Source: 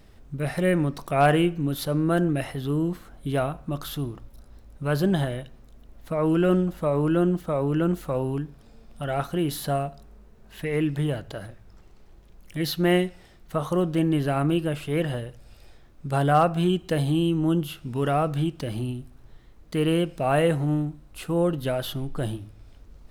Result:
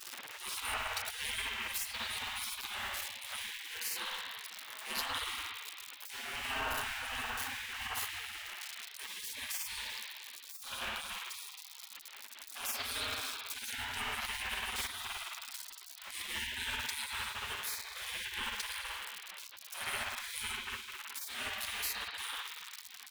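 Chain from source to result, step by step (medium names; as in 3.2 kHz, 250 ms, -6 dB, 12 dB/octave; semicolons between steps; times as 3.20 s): jump at every zero crossing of -31.5 dBFS; spring tank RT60 2.2 s, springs 55 ms, chirp 60 ms, DRR -3.5 dB; spectral gate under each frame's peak -30 dB weak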